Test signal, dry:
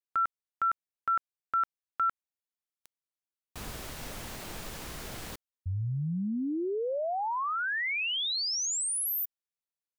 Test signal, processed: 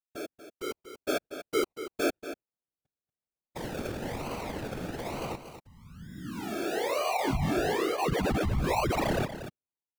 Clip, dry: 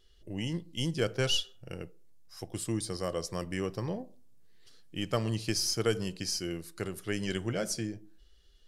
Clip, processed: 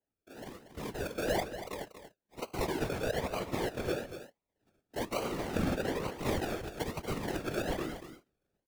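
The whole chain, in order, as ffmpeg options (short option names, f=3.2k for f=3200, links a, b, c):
-filter_complex "[0:a]agate=range=-18dB:threshold=-44dB:ratio=3:release=76:detection=rms,highpass=540,bandreject=f=2.4k:w=9.7,acompressor=threshold=-41dB:ratio=2:attack=28:release=32,alimiter=level_in=6dB:limit=-24dB:level=0:latency=1:release=23,volume=-6dB,dynaudnorm=f=570:g=3:m=12dB,acrusher=samples=35:mix=1:aa=0.000001:lfo=1:lforange=21:lforate=1.1,afftfilt=real='hypot(re,im)*cos(2*PI*random(0))':imag='hypot(re,im)*sin(2*PI*random(1))':win_size=512:overlap=0.75,asplit=2[a][b];[b]aecho=0:1:236:0.282[c];[a][c]amix=inputs=2:normalize=0,adynamicequalizer=threshold=0.00282:dfrequency=4100:dqfactor=0.7:tfrequency=4100:tqfactor=0.7:attack=5:release=100:ratio=0.375:range=3:mode=cutabove:tftype=highshelf,volume=2.5dB"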